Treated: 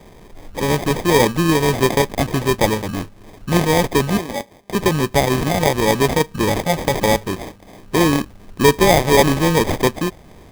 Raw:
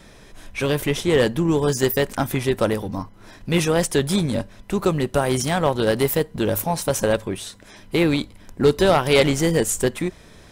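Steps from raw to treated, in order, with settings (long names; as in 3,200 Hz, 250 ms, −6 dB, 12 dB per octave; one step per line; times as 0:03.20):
0:04.17–0:04.75: high-pass filter 420 Hz 12 dB per octave
sample-rate reduction 1,400 Hz, jitter 0%
level +3.5 dB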